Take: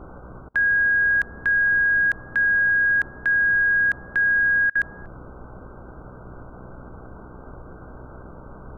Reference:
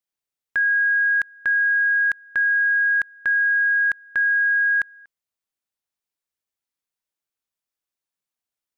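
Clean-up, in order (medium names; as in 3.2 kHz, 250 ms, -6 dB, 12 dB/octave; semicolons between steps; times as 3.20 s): de-hum 62.5 Hz, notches 10; interpolate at 0.49/4.70 s, 52 ms; noise print and reduce 30 dB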